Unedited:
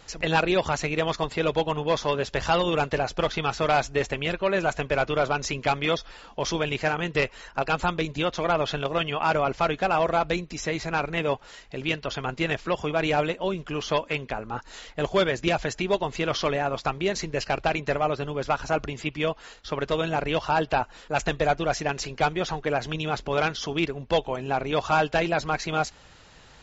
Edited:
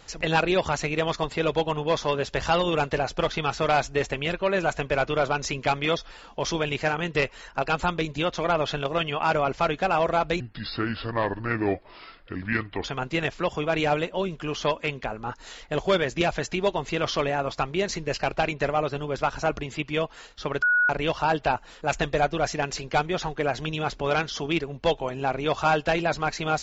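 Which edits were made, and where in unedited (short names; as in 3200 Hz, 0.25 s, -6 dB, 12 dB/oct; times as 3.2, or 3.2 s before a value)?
10.4–12.11 speed 70%
19.89–20.16 bleep 1460 Hz -17.5 dBFS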